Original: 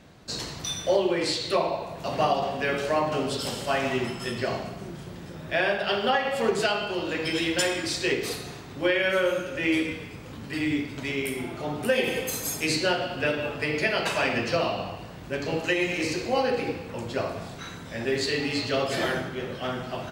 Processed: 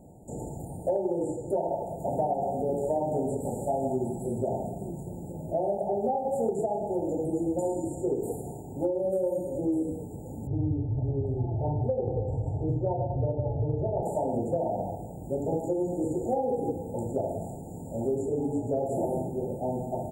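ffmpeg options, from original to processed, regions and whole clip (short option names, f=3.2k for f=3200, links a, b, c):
-filter_complex "[0:a]asettb=1/sr,asplit=3[a][b][c];[a]atrim=end=10.474[d];[b]atrim=start=10.47:end=14.03,asetpts=PTS-STARTPTS,afade=t=in:d=0.004:c=qsin,afade=t=out:st=3.556:d=0.004:c=qsin,lowpass=f=3.2k:w=0.5412,lowpass=f=3.2k:w=1.3066,lowshelf=f=150:t=q:w=3:g=10[e];[c]atrim=start=14.026[f];[d][e]acrossfade=d=0.004:c1=hsin:c2=qsin[g];[g][f]acrossfade=d=0.004:c1=qsin:c2=hsin,acrossover=split=3200[h][i];[i]acompressor=threshold=-43dB:ratio=4:attack=1:release=60[j];[h][j]amix=inputs=2:normalize=0,afftfilt=real='re*(1-between(b*sr/4096,920,6800))':imag='im*(1-between(b*sr/4096,920,6800))':win_size=4096:overlap=0.75,acompressor=threshold=-26dB:ratio=6,volume=2dB"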